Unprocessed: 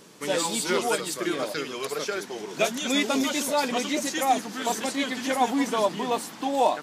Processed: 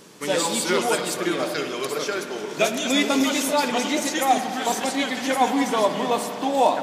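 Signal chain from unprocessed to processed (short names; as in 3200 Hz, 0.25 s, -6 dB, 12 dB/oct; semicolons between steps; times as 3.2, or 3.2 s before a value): spring tank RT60 3.2 s, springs 52 ms, chirp 25 ms, DRR 7 dB; gain +3 dB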